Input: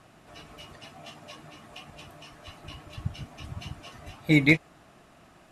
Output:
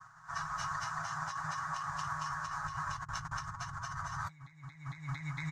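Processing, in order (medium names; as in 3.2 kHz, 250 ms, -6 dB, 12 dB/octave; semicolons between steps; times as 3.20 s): companding laws mixed up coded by A; FFT filter 160 Hz 0 dB, 240 Hz -22 dB, 470 Hz -28 dB, 1 kHz +14 dB, 1.6 kHz +14 dB, 2.6 kHz -15 dB, 6.4 kHz +8 dB, 11 kHz -12 dB; expander -50 dBFS; feedback delay 227 ms, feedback 51%, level -3.5 dB; compressor with a negative ratio -46 dBFS, ratio -1; comb 7.2 ms, depth 47%; trim +1 dB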